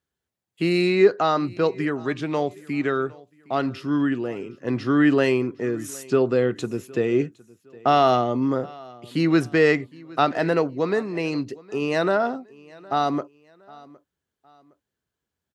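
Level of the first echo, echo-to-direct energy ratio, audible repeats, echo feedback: -23.0 dB, -22.5 dB, 2, 34%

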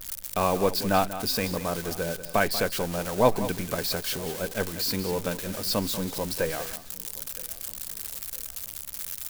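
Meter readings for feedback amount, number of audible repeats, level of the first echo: no steady repeat, 3, -13.0 dB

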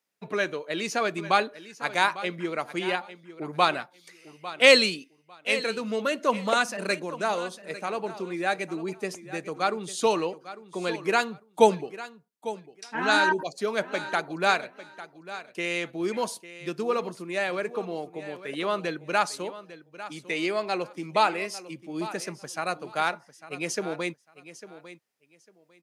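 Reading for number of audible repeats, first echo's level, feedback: 2, -15.0 dB, 20%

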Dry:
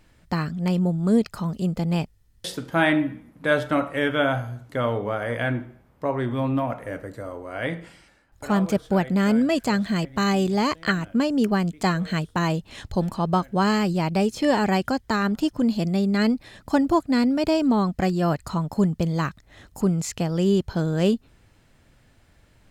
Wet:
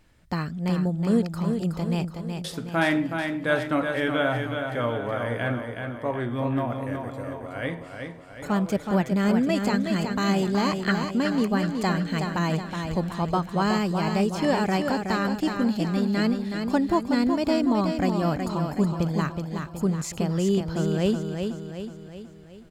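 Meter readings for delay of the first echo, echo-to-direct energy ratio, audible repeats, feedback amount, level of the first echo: 0.371 s, -4.5 dB, 5, 51%, -6.0 dB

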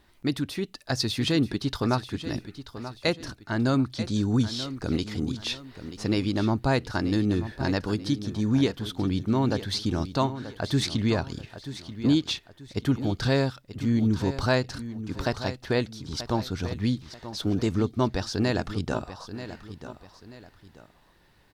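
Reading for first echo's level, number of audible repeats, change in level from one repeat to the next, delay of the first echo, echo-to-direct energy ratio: -12.5 dB, 2, -9.0 dB, 0.934 s, -12.0 dB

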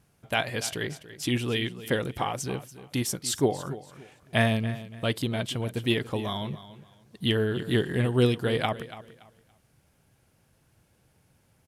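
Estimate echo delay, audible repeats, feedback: 0.285 s, 2, 25%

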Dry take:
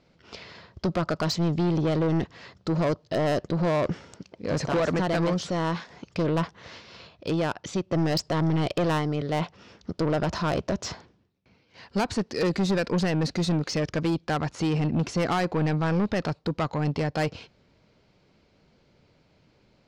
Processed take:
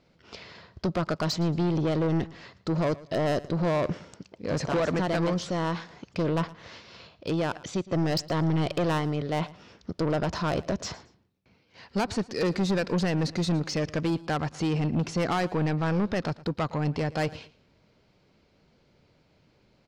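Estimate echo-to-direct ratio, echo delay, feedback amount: -19.5 dB, 0.113 s, 27%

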